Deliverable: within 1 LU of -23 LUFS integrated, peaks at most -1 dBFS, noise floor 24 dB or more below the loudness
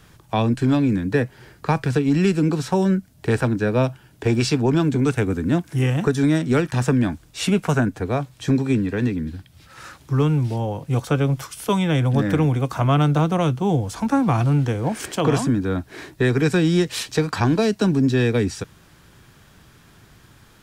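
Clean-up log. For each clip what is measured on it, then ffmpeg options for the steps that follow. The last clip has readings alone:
loudness -21.0 LUFS; peak -8.0 dBFS; loudness target -23.0 LUFS
-> -af "volume=-2dB"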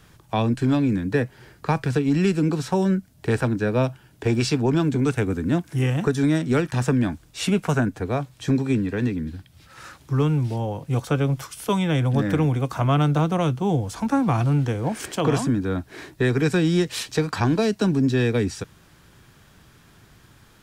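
loudness -23.0 LUFS; peak -10.0 dBFS; noise floor -54 dBFS

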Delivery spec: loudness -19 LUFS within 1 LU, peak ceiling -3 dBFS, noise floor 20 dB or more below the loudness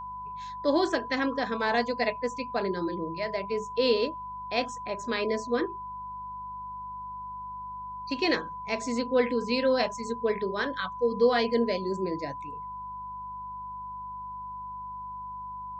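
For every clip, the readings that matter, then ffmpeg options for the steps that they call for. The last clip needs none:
hum 50 Hz; harmonics up to 200 Hz; hum level -50 dBFS; steady tone 1000 Hz; tone level -36 dBFS; loudness -30.5 LUFS; peak -11.5 dBFS; loudness target -19.0 LUFS
-> -af "bandreject=f=50:t=h:w=4,bandreject=f=100:t=h:w=4,bandreject=f=150:t=h:w=4,bandreject=f=200:t=h:w=4"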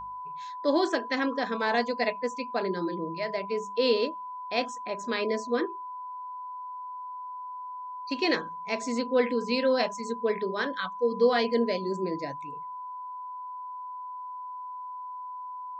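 hum none; steady tone 1000 Hz; tone level -36 dBFS
-> -af "bandreject=f=1k:w=30"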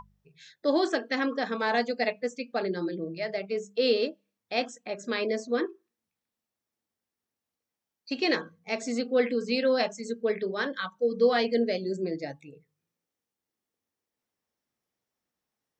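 steady tone none; loudness -29.0 LUFS; peak -12.0 dBFS; loudness target -19.0 LUFS
-> -af "volume=10dB,alimiter=limit=-3dB:level=0:latency=1"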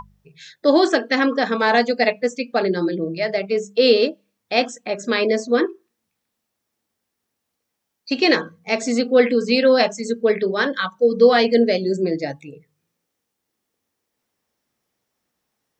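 loudness -19.0 LUFS; peak -3.0 dBFS; noise floor -79 dBFS

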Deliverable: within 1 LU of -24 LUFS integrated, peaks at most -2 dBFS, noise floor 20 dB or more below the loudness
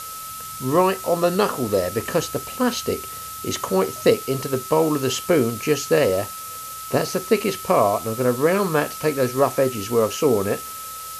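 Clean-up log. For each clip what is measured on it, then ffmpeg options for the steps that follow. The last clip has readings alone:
steady tone 1300 Hz; tone level -34 dBFS; noise floor -34 dBFS; noise floor target -42 dBFS; loudness -21.5 LUFS; peak -3.5 dBFS; loudness target -24.0 LUFS
-> -af "bandreject=f=1.3k:w=30"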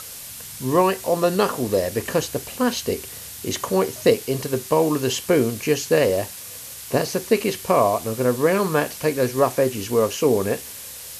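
steady tone none; noise floor -37 dBFS; noise floor target -42 dBFS
-> -af "afftdn=nr=6:nf=-37"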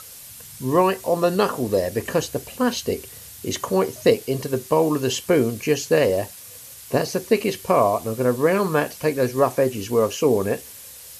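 noise floor -41 dBFS; noise floor target -42 dBFS
-> -af "afftdn=nr=6:nf=-41"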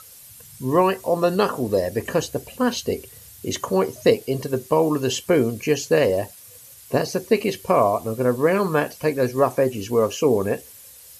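noise floor -45 dBFS; loudness -22.0 LUFS; peak -3.5 dBFS; loudness target -24.0 LUFS
-> -af "volume=-2dB"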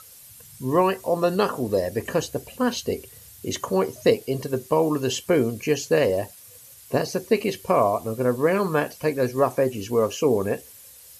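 loudness -24.0 LUFS; peak -5.5 dBFS; noise floor -47 dBFS

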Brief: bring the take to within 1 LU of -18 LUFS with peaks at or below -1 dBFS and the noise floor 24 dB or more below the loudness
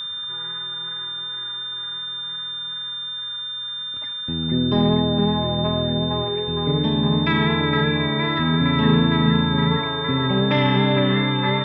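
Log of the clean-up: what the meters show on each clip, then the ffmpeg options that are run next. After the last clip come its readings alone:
steady tone 3600 Hz; tone level -27 dBFS; loudness -21.0 LUFS; peak -6.0 dBFS; loudness target -18.0 LUFS
-> -af "bandreject=f=3.6k:w=30"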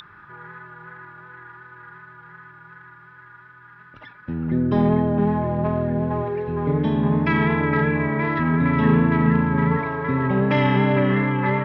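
steady tone none; loudness -20.5 LUFS; peak -6.0 dBFS; loudness target -18.0 LUFS
-> -af "volume=2.5dB"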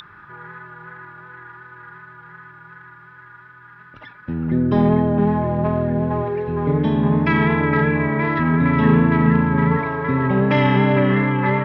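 loudness -18.0 LUFS; peak -3.5 dBFS; noise floor -45 dBFS

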